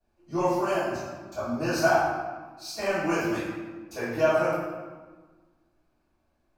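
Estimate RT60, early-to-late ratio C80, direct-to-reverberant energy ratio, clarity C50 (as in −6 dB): 1.4 s, 2.0 dB, −16.5 dB, −1.5 dB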